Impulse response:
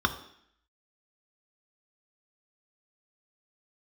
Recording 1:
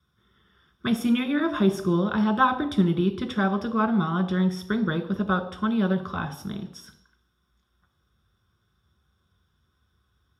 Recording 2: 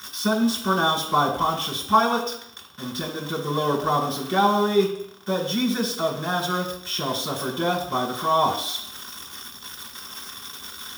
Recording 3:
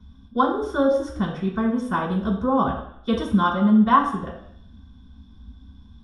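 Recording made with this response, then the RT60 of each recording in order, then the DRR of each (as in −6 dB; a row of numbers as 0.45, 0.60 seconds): 1; 0.65, 0.65, 0.65 seconds; 5.5, −2.0, −7.0 decibels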